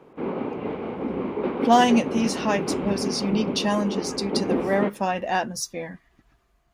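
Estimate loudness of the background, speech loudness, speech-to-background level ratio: −28.5 LKFS, −24.5 LKFS, 4.0 dB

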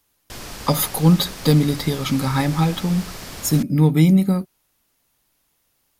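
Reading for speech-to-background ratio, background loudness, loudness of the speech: 15.5 dB, −34.5 LKFS, −19.0 LKFS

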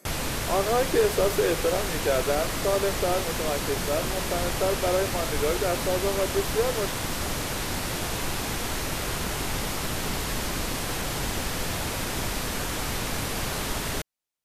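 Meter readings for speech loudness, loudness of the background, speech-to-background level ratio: −27.5 LKFS, −29.0 LKFS, 1.5 dB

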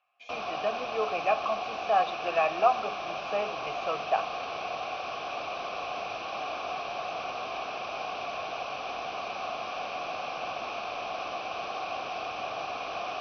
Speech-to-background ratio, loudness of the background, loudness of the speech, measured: 4.5 dB, −35.0 LKFS, −30.5 LKFS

